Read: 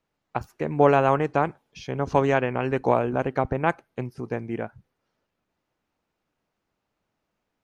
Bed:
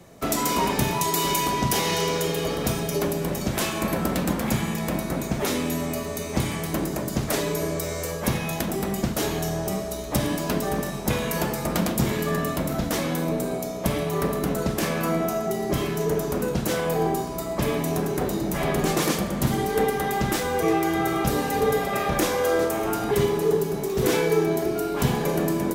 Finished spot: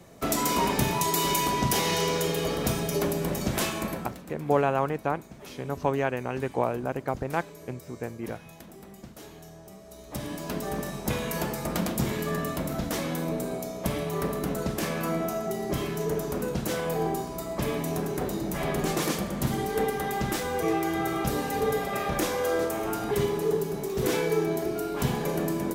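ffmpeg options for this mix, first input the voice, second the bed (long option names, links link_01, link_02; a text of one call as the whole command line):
ffmpeg -i stem1.wav -i stem2.wav -filter_complex "[0:a]adelay=3700,volume=-5.5dB[link_01];[1:a]volume=13.5dB,afade=type=out:start_time=3.63:duration=0.55:silence=0.125893,afade=type=in:start_time=9.79:duration=1.12:silence=0.16788[link_02];[link_01][link_02]amix=inputs=2:normalize=0" out.wav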